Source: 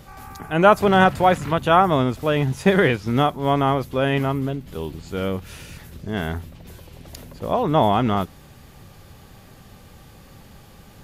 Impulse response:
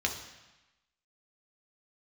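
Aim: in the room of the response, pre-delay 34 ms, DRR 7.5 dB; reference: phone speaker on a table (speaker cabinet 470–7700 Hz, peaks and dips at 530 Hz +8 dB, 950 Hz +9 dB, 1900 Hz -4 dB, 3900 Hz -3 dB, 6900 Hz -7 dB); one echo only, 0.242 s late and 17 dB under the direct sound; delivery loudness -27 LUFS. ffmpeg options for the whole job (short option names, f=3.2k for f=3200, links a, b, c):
-filter_complex "[0:a]aecho=1:1:242:0.141,asplit=2[a][b];[1:a]atrim=start_sample=2205,adelay=34[c];[b][c]afir=irnorm=-1:irlink=0,volume=-14.5dB[d];[a][d]amix=inputs=2:normalize=0,highpass=f=470:w=0.5412,highpass=f=470:w=1.3066,equalizer=f=530:t=q:w=4:g=8,equalizer=f=950:t=q:w=4:g=9,equalizer=f=1.9k:t=q:w=4:g=-4,equalizer=f=3.9k:t=q:w=4:g=-3,equalizer=f=6.9k:t=q:w=4:g=-7,lowpass=f=7.7k:w=0.5412,lowpass=f=7.7k:w=1.3066,volume=-10dB"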